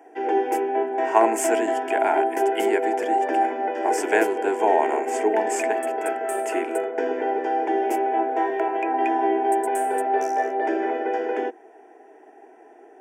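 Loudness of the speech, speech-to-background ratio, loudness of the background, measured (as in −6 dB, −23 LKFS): −26.0 LKFS, −2.0 dB, −24.0 LKFS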